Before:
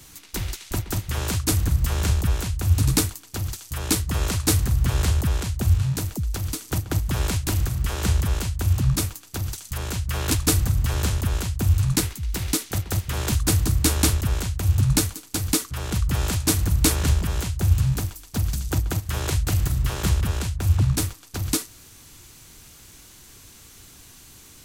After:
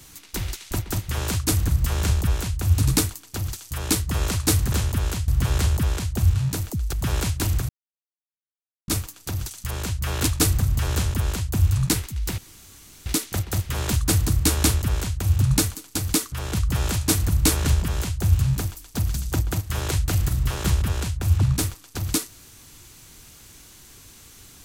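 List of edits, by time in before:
0:06.37–0:07.00: remove
0:07.76–0:08.95: silence
0:11.01–0:11.57: duplicate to 0:04.72
0:12.45: splice in room tone 0.68 s

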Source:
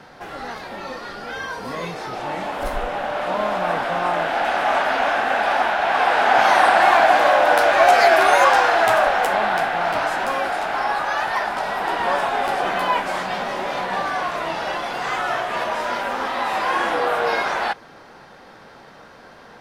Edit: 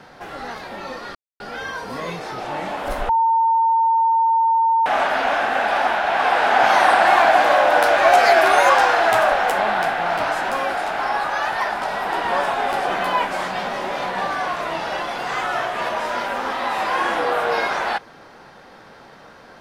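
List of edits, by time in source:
0:01.15: splice in silence 0.25 s
0:02.84–0:04.61: beep over 907 Hz −13.5 dBFS

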